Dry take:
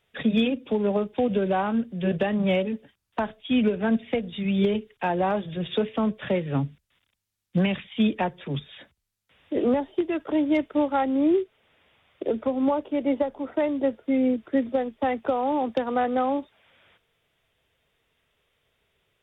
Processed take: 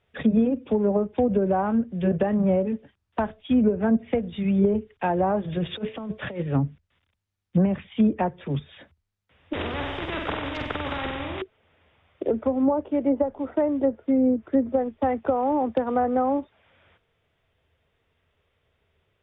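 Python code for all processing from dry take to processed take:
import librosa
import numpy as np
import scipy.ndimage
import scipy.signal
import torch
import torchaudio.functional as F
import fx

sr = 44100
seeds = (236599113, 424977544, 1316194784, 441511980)

y = fx.chain(x, sr, fx.low_shelf(hz=250.0, db=-3.0),
    fx.over_compress(threshold_db=-29.0, ratio=-0.5), at=(5.44, 6.43))
y = fx.chain(y, sr, fx.over_compress(threshold_db=-28.0, ratio=-1.0),
    fx.room_flutter(wall_m=8.1, rt60_s=0.47),
    fx.spectral_comp(ratio=4.0), at=(9.53, 11.42))
y = fx.lowpass(y, sr, hz=1800.0, slope=6)
y = fx.env_lowpass_down(y, sr, base_hz=1000.0, full_db=-19.0)
y = fx.peak_eq(y, sr, hz=82.0, db=10.0, octaves=0.47)
y = F.gain(torch.from_numpy(y), 2.0).numpy()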